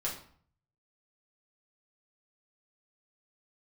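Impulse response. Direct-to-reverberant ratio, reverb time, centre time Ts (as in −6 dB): −5.0 dB, 0.55 s, 27 ms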